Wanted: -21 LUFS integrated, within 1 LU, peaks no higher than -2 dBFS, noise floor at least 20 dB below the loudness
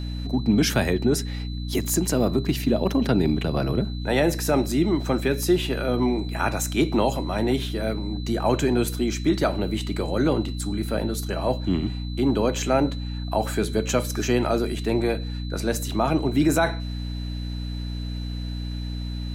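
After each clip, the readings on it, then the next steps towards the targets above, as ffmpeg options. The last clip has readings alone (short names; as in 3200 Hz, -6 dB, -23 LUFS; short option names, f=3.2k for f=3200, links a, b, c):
hum 60 Hz; harmonics up to 300 Hz; hum level -27 dBFS; steady tone 4000 Hz; tone level -42 dBFS; loudness -24.5 LUFS; peak -9.0 dBFS; loudness target -21.0 LUFS
-> -af "bandreject=f=60:t=h:w=4,bandreject=f=120:t=h:w=4,bandreject=f=180:t=h:w=4,bandreject=f=240:t=h:w=4,bandreject=f=300:t=h:w=4"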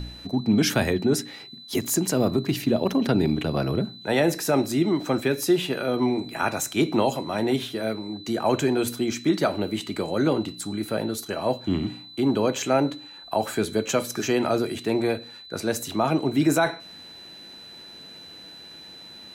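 hum none; steady tone 4000 Hz; tone level -42 dBFS
-> -af "bandreject=f=4k:w=30"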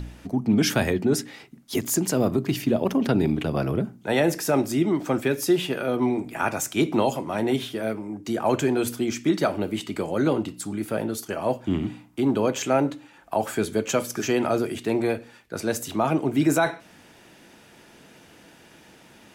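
steady tone none; loudness -25.0 LUFS; peak -10.0 dBFS; loudness target -21.0 LUFS
-> -af "volume=4dB"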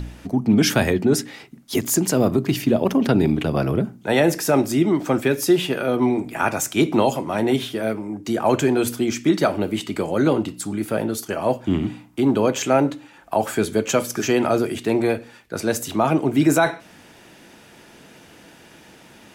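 loudness -21.0 LUFS; peak -6.0 dBFS; noise floor -48 dBFS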